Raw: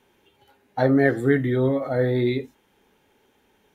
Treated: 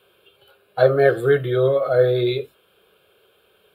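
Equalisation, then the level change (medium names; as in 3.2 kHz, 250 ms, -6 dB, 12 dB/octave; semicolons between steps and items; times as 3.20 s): high-pass 210 Hz 6 dB/octave; static phaser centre 1.3 kHz, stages 8; +8.5 dB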